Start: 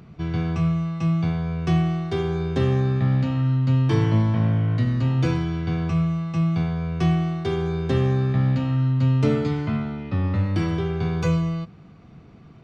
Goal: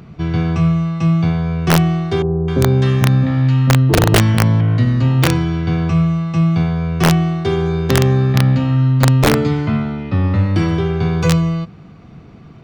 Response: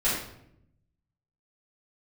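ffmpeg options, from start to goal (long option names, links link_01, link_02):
-filter_complex "[0:a]asettb=1/sr,asplit=3[link_01][link_02][link_03];[link_01]atrim=end=2.224[link_04];[link_02]atrim=start=2.22:end=4.61,asetpts=PTS-STARTPTS,afade=type=in:duration=0.004:curve=qsin,afade=type=out:start_time=2.386:duration=0.004:curve=qsin,acrossover=split=820[link_05][link_06];[link_06]adelay=260[link_07];[link_05][link_07]amix=inputs=2:normalize=0,atrim=end_sample=105399[link_08];[link_03]atrim=start=4.606[link_09];[link_04][link_08]acrossfade=duration=0.004:curve1=hsin:curve2=qsin[link_10];[link_10][link_09]acrossfade=duration=0.004:curve1=qsin:curve2=hsin,aeval=exprs='(mod(3.98*val(0)+1,2)-1)/3.98':channel_layout=same,volume=7.5dB"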